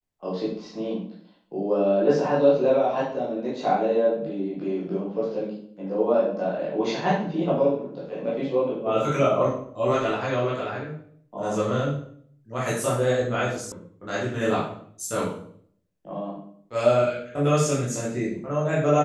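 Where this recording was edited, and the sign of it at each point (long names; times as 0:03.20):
0:13.72: cut off before it has died away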